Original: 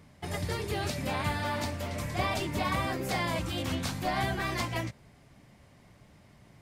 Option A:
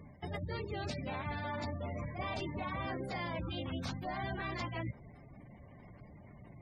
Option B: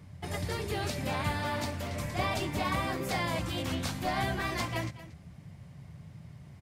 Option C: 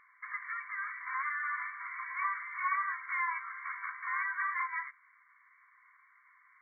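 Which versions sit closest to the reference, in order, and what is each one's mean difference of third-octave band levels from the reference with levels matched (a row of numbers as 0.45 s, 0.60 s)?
B, A, C; 1.5 dB, 9.5 dB, 28.0 dB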